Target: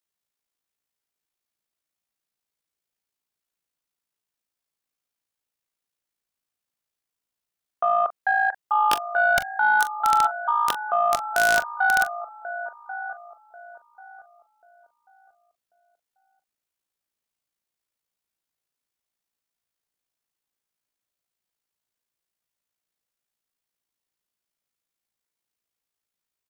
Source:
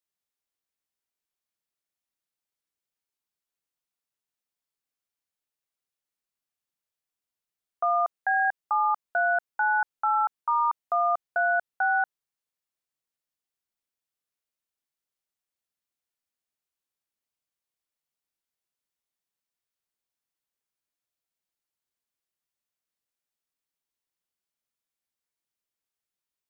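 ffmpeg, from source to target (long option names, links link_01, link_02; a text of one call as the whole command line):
ffmpeg -i in.wav -filter_complex "[0:a]tremolo=f=56:d=0.519,asplit=2[link_01][link_02];[link_02]adelay=1089,lowpass=frequency=930:poles=1,volume=-8.5dB,asplit=2[link_03][link_04];[link_04]adelay=1089,lowpass=frequency=930:poles=1,volume=0.35,asplit=2[link_05][link_06];[link_06]adelay=1089,lowpass=frequency=930:poles=1,volume=0.35,asplit=2[link_07][link_08];[link_08]adelay=1089,lowpass=frequency=930:poles=1,volume=0.35[link_09];[link_03][link_05][link_07][link_09]amix=inputs=4:normalize=0[link_10];[link_01][link_10]amix=inputs=2:normalize=0,aeval=exprs='(mod(7.08*val(0)+1,2)-1)/7.08':channel_layout=same,asplit=2[link_11][link_12];[link_12]aecho=0:1:27|42:0.158|0.224[link_13];[link_11][link_13]amix=inputs=2:normalize=0,aeval=exprs='0.178*(cos(1*acos(clip(val(0)/0.178,-1,1)))-cos(1*PI/2))+0.00708*(cos(3*acos(clip(val(0)/0.178,-1,1)))-cos(3*PI/2))':channel_layout=same,volume=6dB" out.wav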